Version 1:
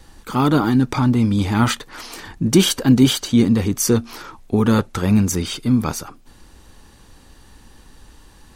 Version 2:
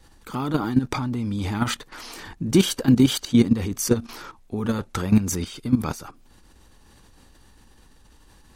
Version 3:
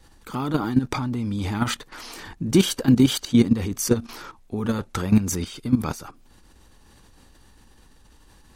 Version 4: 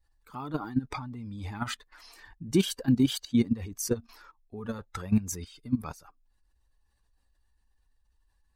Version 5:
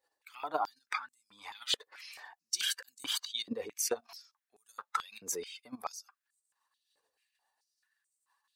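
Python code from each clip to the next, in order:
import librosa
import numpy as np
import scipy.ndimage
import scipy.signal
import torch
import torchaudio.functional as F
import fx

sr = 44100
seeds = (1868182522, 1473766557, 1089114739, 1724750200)

y1 = fx.level_steps(x, sr, step_db=13)
y2 = y1
y3 = fx.bin_expand(y2, sr, power=1.5)
y3 = y3 * librosa.db_to_amplitude(-5.5)
y4 = fx.filter_held_highpass(y3, sr, hz=4.6, low_hz=480.0, high_hz=7800.0)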